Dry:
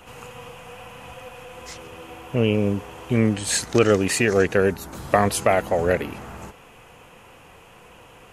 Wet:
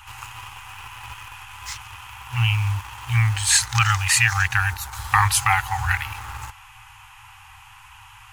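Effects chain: FFT band-reject 120–760 Hz; in parallel at -10.5 dB: word length cut 6-bit, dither none; on the sum: trim +4 dB

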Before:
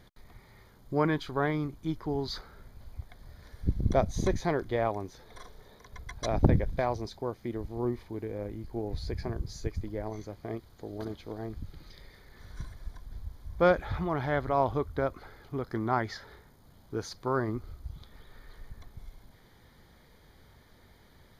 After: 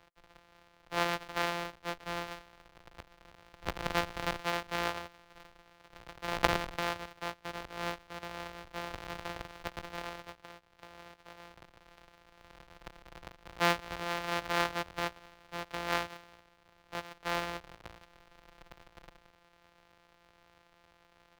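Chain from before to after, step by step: sorted samples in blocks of 256 samples; treble shelf 8.2 kHz +7.5 dB; 10.31–12.70 s: compression 5:1, threshold -43 dBFS, peak gain reduction 11 dB; three-band isolator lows -15 dB, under 510 Hz, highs -17 dB, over 4.7 kHz

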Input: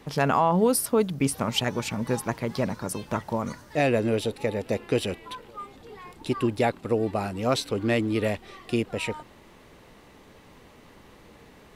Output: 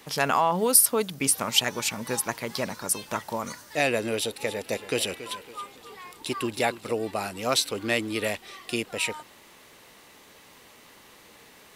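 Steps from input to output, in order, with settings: tilt EQ +3 dB/octave; 4.15–6.91 s: modulated delay 279 ms, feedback 37%, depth 55 cents, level -13.5 dB

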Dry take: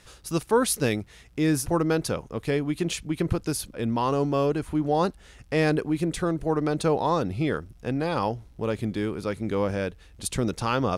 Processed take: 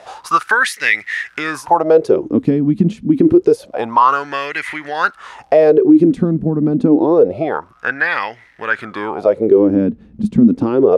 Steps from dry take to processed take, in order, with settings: treble shelf 2.3 kHz +11 dB, from 6.39 s +2.5 dB; compression 5:1, threshold -26 dBFS, peak gain reduction 13 dB; wah-wah 0.27 Hz 210–2000 Hz, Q 11; loudness maximiser +35.5 dB; trim -1 dB

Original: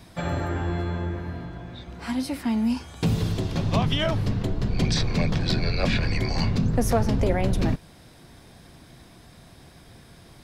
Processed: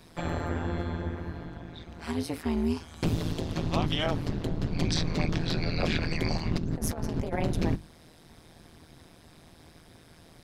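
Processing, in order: hum notches 50/100/150/200 Hz; 6.10–7.40 s: compressor with a negative ratio -25 dBFS, ratio -0.5; AM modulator 160 Hz, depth 90%

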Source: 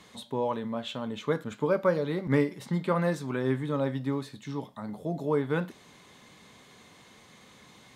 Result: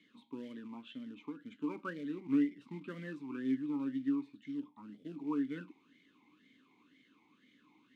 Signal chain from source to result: 1.01–1.64 s: compression 6:1, threshold -30 dBFS, peak gain reduction 8.5 dB; short-mantissa float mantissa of 2-bit; talking filter i-u 2 Hz

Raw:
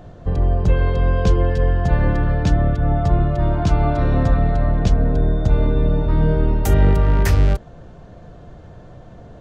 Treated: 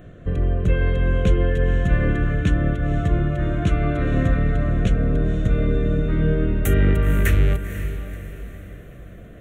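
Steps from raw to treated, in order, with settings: bass shelf 200 Hz -7 dB; static phaser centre 2.1 kHz, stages 4; on a send: echo that smears into a reverb 507 ms, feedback 44%, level -10.5 dB; on the sum: trim +3 dB

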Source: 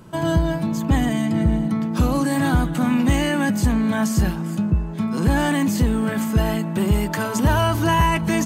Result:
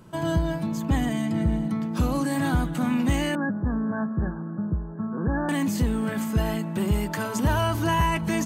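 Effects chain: 3.35–5.49 s: rippled Chebyshev low-pass 1.7 kHz, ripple 3 dB; trim -5 dB

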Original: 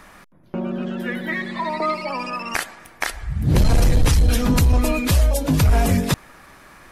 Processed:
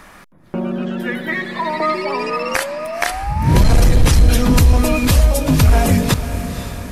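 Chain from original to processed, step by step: echo that smears into a reverb 519 ms, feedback 54%, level -11 dB; painted sound rise, 1.94–3.62 s, 360–1000 Hz -30 dBFS; trim +4 dB

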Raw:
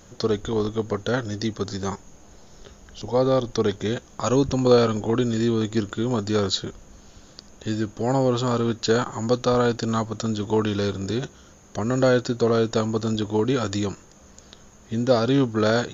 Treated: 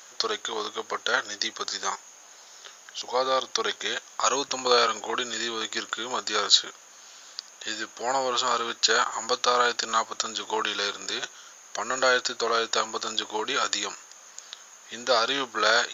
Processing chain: high-pass 1.1 kHz 12 dB/octave; trim +7 dB

